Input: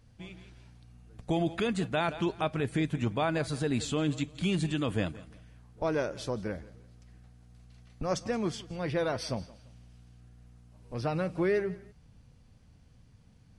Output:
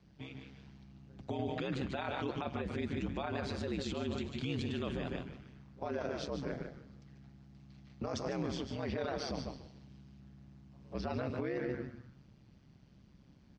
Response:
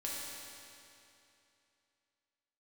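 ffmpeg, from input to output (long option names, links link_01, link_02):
-filter_complex "[0:a]asplit=2[link_01][link_02];[link_02]aecho=0:1:149:0.316[link_03];[link_01][link_03]amix=inputs=2:normalize=0,afreqshift=14,asplit=2[link_04][link_05];[link_05]asplit=4[link_06][link_07][link_08][link_09];[link_06]adelay=138,afreqshift=-120,volume=-13dB[link_10];[link_07]adelay=276,afreqshift=-240,volume=-21.4dB[link_11];[link_08]adelay=414,afreqshift=-360,volume=-29.8dB[link_12];[link_09]adelay=552,afreqshift=-480,volume=-38.2dB[link_13];[link_10][link_11][link_12][link_13]amix=inputs=4:normalize=0[link_14];[link_04][link_14]amix=inputs=2:normalize=0,alimiter=level_in=3.5dB:limit=-24dB:level=0:latency=1:release=18,volume=-3.5dB,lowpass=frequency=5800:width=0.5412,lowpass=frequency=5800:width=1.3066,aeval=exprs='val(0)*sin(2*PI*67*n/s)':channel_layout=same,highpass=52,volume=1dB"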